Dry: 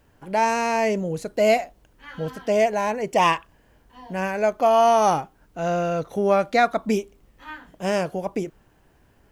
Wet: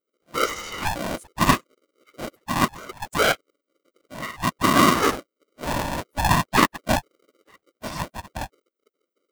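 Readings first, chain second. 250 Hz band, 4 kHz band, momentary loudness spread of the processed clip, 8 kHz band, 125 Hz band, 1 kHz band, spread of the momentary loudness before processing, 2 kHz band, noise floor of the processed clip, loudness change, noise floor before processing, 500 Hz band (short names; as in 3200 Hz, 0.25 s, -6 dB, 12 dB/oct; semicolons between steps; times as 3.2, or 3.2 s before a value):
+1.5 dB, +6.5 dB, 17 LU, +6.0 dB, +4.0 dB, -2.0 dB, 15 LU, +2.5 dB, -84 dBFS, -0.5 dB, -59 dBFS, -8.5 dB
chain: per-bin expansion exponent 3; whisperiser; polarity switched at an audio rate 430 Hz; gain +4 dB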